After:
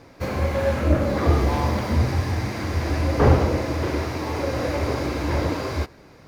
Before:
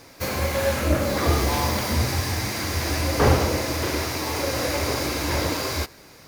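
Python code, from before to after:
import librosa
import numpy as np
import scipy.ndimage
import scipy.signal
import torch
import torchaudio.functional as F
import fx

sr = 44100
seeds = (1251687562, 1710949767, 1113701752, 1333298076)

y = fx.lowpass(x, sr, hz=1700.0, slope=6)
y = fx.low_shelf(y, sr, hz=420.0, db=3.5)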